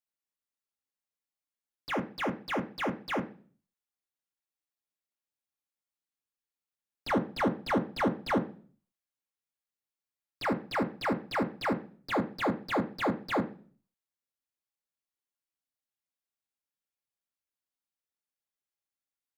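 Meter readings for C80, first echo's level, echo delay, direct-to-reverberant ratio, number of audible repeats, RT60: 19.5 dB, none, none, 4.0 dB, none, 0.40 s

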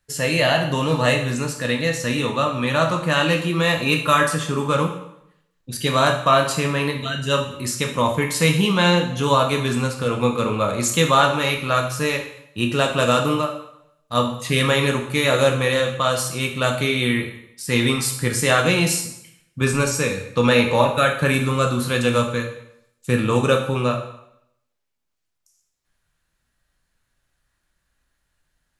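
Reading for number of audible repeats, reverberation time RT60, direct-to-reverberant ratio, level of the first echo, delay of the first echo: none, 0.75 s, 2.5 dB, none, none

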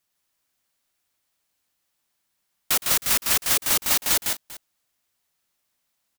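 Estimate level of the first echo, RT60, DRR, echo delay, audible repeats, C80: -18.5 dB, none, none, 0.114 s, 3, none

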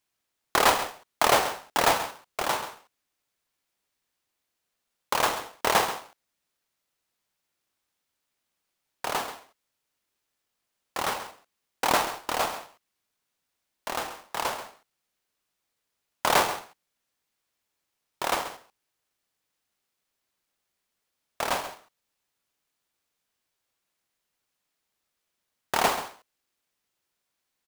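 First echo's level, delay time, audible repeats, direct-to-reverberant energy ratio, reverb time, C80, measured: -12.5 dB, 0.134 s, 1, none, none, none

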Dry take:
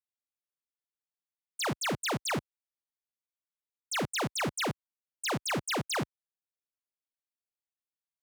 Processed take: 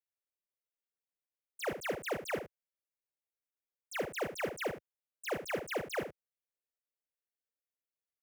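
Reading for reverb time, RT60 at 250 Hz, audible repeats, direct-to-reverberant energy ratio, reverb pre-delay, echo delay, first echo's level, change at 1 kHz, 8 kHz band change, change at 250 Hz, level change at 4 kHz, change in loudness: none, none, 1, none, none, 72 ms, -10.0 dB, -7.5 dB, -12.0 dB, -8.5 dB, -12.5 dB, -5.5 dB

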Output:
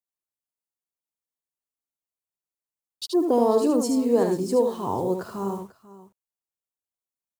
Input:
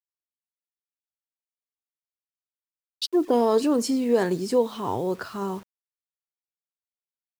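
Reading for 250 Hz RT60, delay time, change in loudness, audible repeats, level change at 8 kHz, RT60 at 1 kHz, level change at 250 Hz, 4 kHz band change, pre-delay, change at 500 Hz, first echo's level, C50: none, 76 ms, +1.0 dB, 2, +0.5 dB, none, +1.0 dB, -4.5 dB, none, +1.0 dB, -5.5 dB, none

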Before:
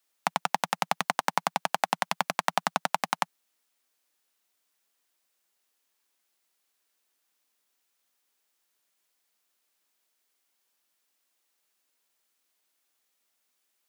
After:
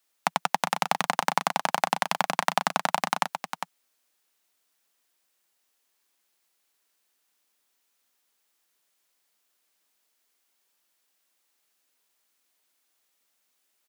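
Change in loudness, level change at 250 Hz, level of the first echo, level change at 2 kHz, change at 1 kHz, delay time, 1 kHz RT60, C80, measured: +2.5 dB, +2.5 dB, -8.0 dB, +2.5 dB, +2.5 dB, 0.404 s, none, none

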